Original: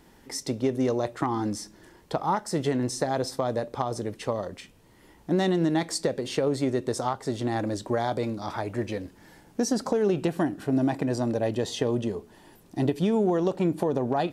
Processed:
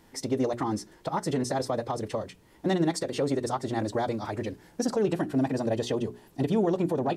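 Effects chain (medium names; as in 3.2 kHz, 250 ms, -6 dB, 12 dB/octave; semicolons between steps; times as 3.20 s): time stretch by phase-locked vocoder 0.5×; hum notches 60/120/180/240/300/360/420 Hz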